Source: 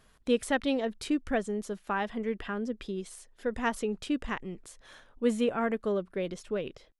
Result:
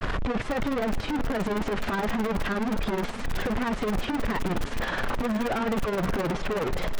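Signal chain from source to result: one-bit comparator; Bessel low-pass 1.6 kHz, order 2; on a send: echo that smears into a reverb 495 ms, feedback 53%, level -13 dB; on the sum: granulator 89 ms, grains 19 per s, spray 13 ms, pitch spread up and down by 0 st; peaking EQ 380 Hz -2 dB 1.4 oct; in parallel at -7.5 dB: integer overflow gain 31 dB; on the sum: trim +6.5 dB

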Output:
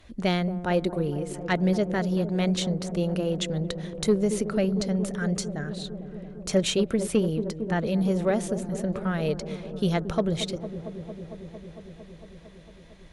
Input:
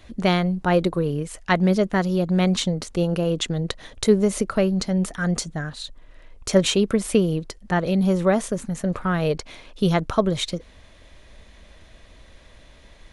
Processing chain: dynamic bell 1.1 kHz, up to -6 dB, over -41 dBFS, Q 2.4; Chebyshev shaper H 3 -18 dB, 7 -45 dB, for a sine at -3.5 dBFS; on a send: feedback echo behind a low-pass 227 ms, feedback 81%, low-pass 650 Hz, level -10.5 dB; on the sum: saturation -12.5 dBFS, distortion -18 dB

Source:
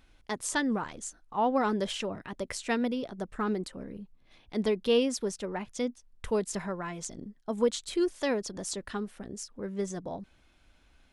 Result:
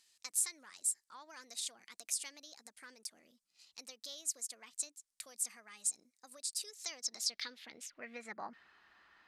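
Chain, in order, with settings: fifteen-band graphic EQ 160 Hz +7 dB, 1.6 kHz +3 dB, 4 kHz +5 dB; compression 3:1, threshold -35 dBFS, peak gain reduction 11.5 dB; band-pass sweep 7 kHz -> 1.1 kHz, 7.88–10.49 s; tape speed +20%; trim +9 dB

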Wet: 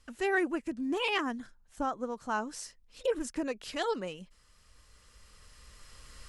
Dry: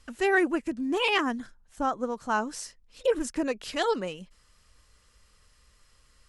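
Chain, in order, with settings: recorder AGC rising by 7.1 dB/s; trim -5.5 dB

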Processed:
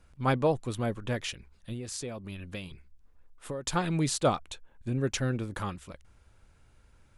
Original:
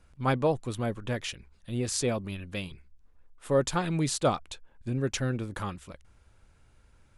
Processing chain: 1.72–3.67 s: compression 6:1, threshold -35 dBFS, peak gain reduction 15 dB; 4.26–5.11 s: band-stop 4.9 kHz, Q 9.2

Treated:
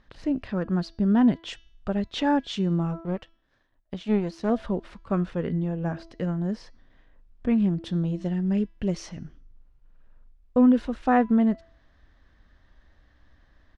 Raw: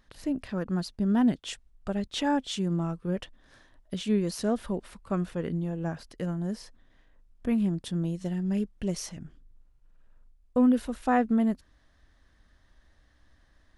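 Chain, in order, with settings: resampled via 32 kHz; 3.00–4.50 s: power-law waveshaper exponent 1.4; distance through air 140 m; de-hum 331.2 Hz, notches 20; trim +4 dB

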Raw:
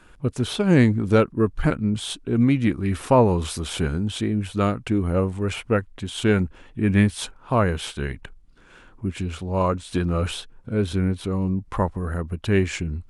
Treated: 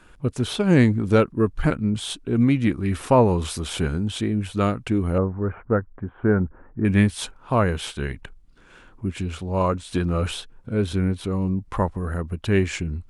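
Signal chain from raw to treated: 5.18–6.85 s: steep low-pass 1.6 kHz 36 dB/octave

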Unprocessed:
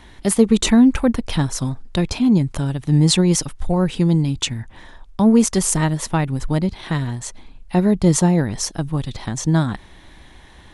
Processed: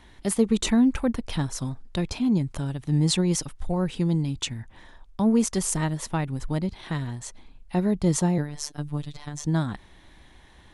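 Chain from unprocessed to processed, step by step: 8.38–9.44 s: robot voice 147 Hz; trim -7.5 dB

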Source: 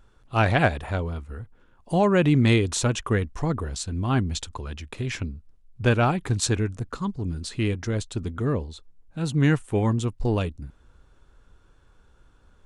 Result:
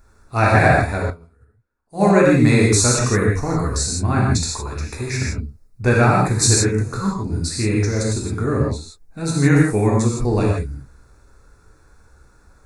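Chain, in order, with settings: Butterworth band-stop 3.1 kHz, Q 2.2; treble shelf 4.4 kHz +8.5 dB; gated-style reverb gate 190 ms flat, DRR -4 dB; 1.10–2.05 s: upward expansion 2.5:1, over -30 dBFS; trim +1.5 dB

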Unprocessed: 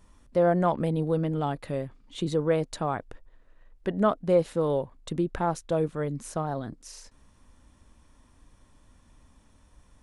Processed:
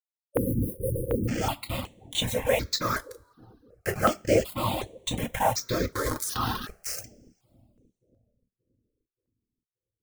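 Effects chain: FFT filter 210 Hz 0 dB, 440 Hz +1 dB, 5.4 kHz +15 dB, 9 kHz +10 dB; whisper effect; bit crusher 5-bit; 0.35–1.26 s: spectral replace 580–9000 Hz before; 5.95–6.57 s: transient shaper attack -6 dB, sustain +12 dB; bucket-brigade echo 577 ms, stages 2048, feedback 42%, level -20 dB; two-slope reverb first 0.29 s, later 1.6 s, from -22 dB, DRR 3.5 dB; reverb removal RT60 0.62 s; stepped phaser 2.7 Hz 740–5000 Hz

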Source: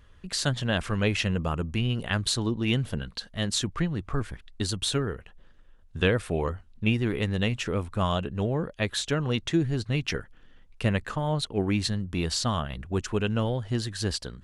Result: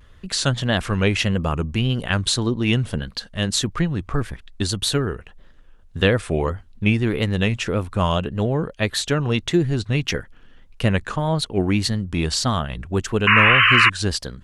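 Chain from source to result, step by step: painted sound noise, 13.27–13.90 s, 1–3 kHz -20 dBFS; vibrato 1.7 Hz 78 cents; trim +6 dB

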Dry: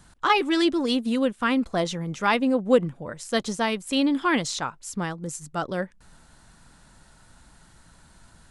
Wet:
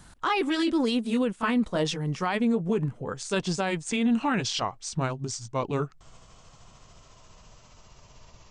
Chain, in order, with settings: pitch bend over the whole clip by -7 st starting unshifted; peak limiter -19.5 dBFS, peak gain reduction 11 dB; trim +2.5 dB

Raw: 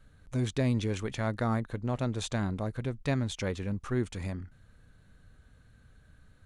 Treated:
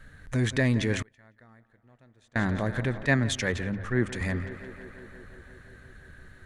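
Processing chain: peaking EQ 1.8 kHz +13.5 dB 0.4 oct; hum notches 50/100 Hz; on a send: tape echo 173 ms, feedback 84%, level -15 dB, low-pass 4.2 kHz; 1.02–2.36 s: on the sum: inverted gate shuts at -36 dBFS, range -35 dB; in parallel at +3 dB: peak limiter -29.5 dBFS, peak gain reduction 13.5 dB; 3.05–4.21 s: on the sum: three bands expanded up and down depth 100%

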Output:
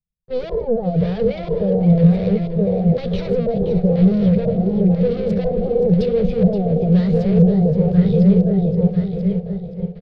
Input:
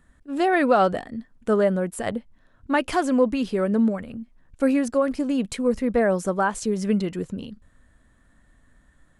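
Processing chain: backward echo that repeats 455 ms, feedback 54%, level -6.5 dB; gate with hold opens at -43 dBFS; waveshaping leveller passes 5; LFO low-pass square 1.1 Hz 560–2100 Hz; formant shift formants +5 st; peak limiter -4.5 dBFS, peak gain reduction 11 dB; FFT filter 100 Hz 0 dB, 200 Hz +6 dB, 320 Hz -29 dB, 530 Hz +4 dB, 1.2 kHz -27 dB, 2.9 kHz -26 dB, 4.8 kHz -7 dB, 8.4 kHz -23 dB; on a send: feedback delay 481 ms, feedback 37%, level -10.5 dB; on the sum: speed mistake 48 kHz file played as 44.1 kHz; high-order bell 710 Hz -9.5 dB 1.1 oct

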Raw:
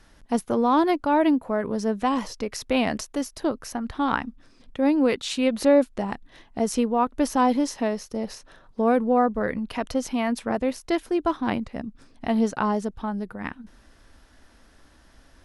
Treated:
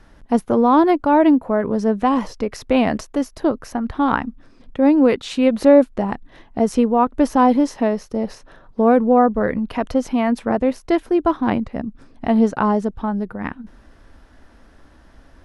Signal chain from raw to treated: treble shelf 2.6 kHz -11.5 dB; trim +7 dB

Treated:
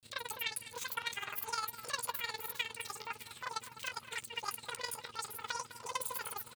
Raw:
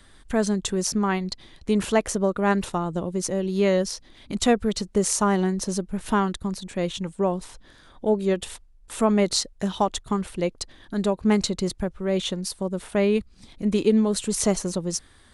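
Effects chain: one-sided wavefolder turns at -15 dBFS; high-pass 1.2 kHz 12 dB/octave; tilt EQ -2.5 dB/octave; compression 2:1, threshold -48 dBFS, peak gain reduction 13.5 dB; hum 50 Hz, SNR 21 dB; granulator, pitch spread up and down by 0 st; square tremolo 8.4 Hz, depth 60%, duty 35%; doubling 30 ms -13 dB; echo whose repeats swap between lows and highs 478 ms, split 1.8 kHz, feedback 75%, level -13.5 dB; speed mistake 33 rpm record played at 78 rpm; trim +9.5 dB

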